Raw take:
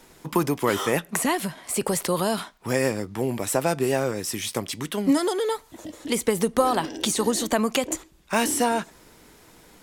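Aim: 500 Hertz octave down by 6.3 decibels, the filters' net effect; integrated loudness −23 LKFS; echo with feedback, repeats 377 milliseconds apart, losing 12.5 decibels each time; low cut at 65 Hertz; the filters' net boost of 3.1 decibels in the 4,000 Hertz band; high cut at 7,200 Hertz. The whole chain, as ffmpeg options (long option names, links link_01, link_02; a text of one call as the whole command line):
ffmpeg -i in.wav -af "highpass=65,lowpass=7200,equalizer=frequency=500:width_type=o:gain=-8,equalizer=frequency=4000:width_type=o:gain=4.5,aecho=1:1:377|754|1131:0.237|0.0569|0.0137,volume=4dB" out.wav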